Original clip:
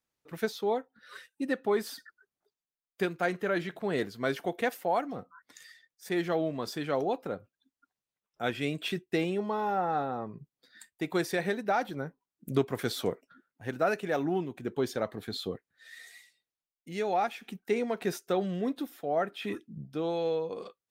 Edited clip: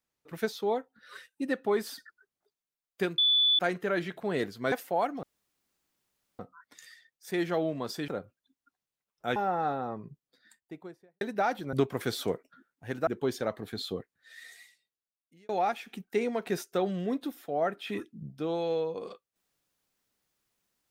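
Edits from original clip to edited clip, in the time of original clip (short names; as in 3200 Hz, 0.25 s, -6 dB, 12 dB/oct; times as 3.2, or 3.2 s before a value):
3.18 add tone 3470 Hz -20.5 dBFS 0.41 s
4.31–4.66 cut
5.17 insert room tone 1.16 s
6.86–7.24 cut
8.52–9.66 cut
10.26–11.51 studio fade out
12.03–12.51 cut
13.85–14.62 cut
16.06–17.04 fade out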